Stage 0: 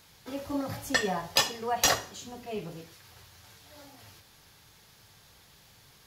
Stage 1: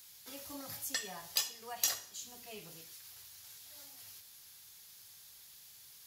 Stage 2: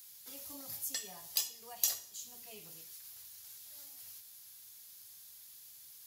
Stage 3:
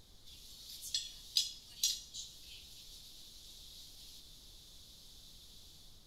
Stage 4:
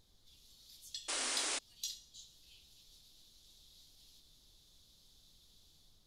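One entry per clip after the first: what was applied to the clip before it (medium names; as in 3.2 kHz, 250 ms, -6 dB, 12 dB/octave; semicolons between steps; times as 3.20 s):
pre-emphasis filter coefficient 0.9; compression 1.5:1, threshold -49 dBFS, peak gain reduction 9.5 dB; trim +4.5 dB
treble shelf 6.6 kHz +9.5 dB; modulation noise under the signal 26 dB; dynamic bell 1.5 kHz, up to -6 dB, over -57 dBFS, Q 1.4; trim -5 dB
level rider gain up to 7 dB; ladder band-pass 4 kHz, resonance 65%; added noise brown -64 dBFS; trim +4.5 dB
painted sound noise, 1.08–1.59 s, 240–10000 Hz -29 dBFS; trim -8.5 dB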